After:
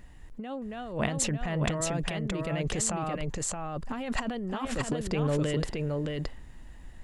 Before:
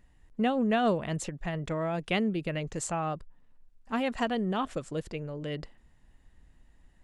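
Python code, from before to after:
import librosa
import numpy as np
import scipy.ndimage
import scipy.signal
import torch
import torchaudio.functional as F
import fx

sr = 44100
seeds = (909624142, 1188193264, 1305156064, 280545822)

p1 = fx.over_compress(x, sr, threshold_db=-37.0, ratio=-1.0)
p2 = p1 + fx.echo_single(p1, sr, ms=621, db=-3.5, dry=0)
y = p2 * librosa.db_to_amplitude(5.0)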